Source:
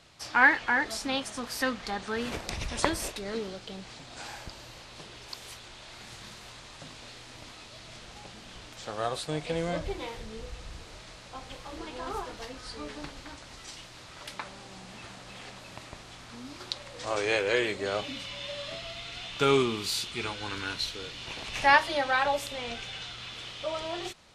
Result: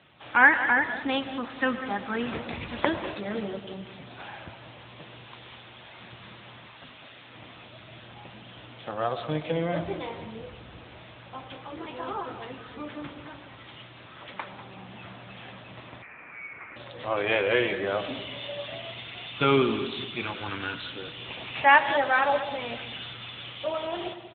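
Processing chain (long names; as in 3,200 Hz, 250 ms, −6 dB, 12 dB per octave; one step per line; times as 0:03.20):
notch filter 430 Hz, Q 12
0:02.94–0:03.55: double-tracking delay 19 ms −4 dB
0:06.70–0:07.33: low-shelf EQ 430 Hz −6.5 dB
repeating echo 193 ms, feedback 25%, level −13 dB
convolution reverb RT60 1.2 s, pre-delay 55 ms, DRR 12 dB
0:16.02–0:16.76: voice inversion scrambler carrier 2,500 Hz
level +3.5 dB
AMR narrowband 10.2 kbit/s 8,000 Hz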